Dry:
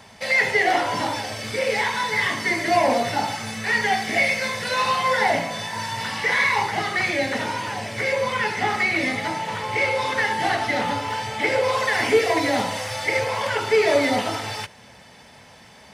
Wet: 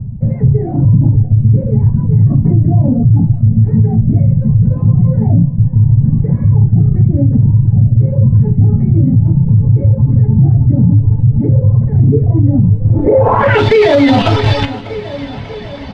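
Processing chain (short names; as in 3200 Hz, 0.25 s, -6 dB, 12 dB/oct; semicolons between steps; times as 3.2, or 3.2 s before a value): reverb removal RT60 1.2 s; tilt -4.5 dB/oct; in parallel at -9 dB: Schmitt trigger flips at -24.5 dBFS; on the sum: high shelf 5300 Hz +7.5 dB; resonator 140 Hz, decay 0.32 s, harmonics all, mix 60%; on a send: feedback echo 0.592 s, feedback 57%, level -22.5 dB; on the sum: spectral gain 2.31–2.52, 510–1500 Hz +8 dB; low-pass sweep 140 Hz -> 3700 Hz, 12.8–13.64; maximiser +23 dB; gain -1 dB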